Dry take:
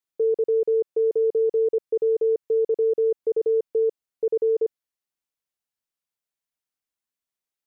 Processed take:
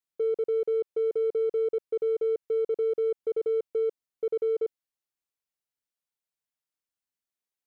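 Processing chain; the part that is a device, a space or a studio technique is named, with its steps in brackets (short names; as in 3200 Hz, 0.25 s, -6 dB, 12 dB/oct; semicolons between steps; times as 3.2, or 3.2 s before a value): parallel distortion (in parallel at -11 dB: hard clip -29.5 dBFS, distortion -9 dB); on the sum: gain -6 dB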